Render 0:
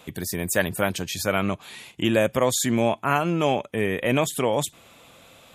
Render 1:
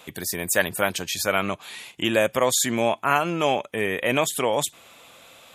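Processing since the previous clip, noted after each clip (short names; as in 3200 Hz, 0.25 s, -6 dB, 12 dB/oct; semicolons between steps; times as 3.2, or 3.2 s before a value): low shelf 330 Hz -10.5 dB; gain +3 dB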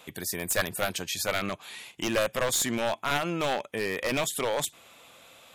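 one-sided fold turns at -16.5 dBFS; gain -4 dB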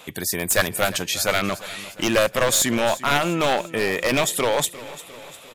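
feedback echo 0.351 s, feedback 56%, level -17 dB; gain +7.5 dB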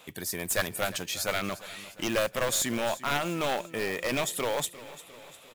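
short-mantissa float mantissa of 2-bit; gain -8.5 dB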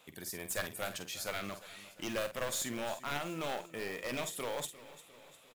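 doubler 49 ms -10 dB; gain -9 dB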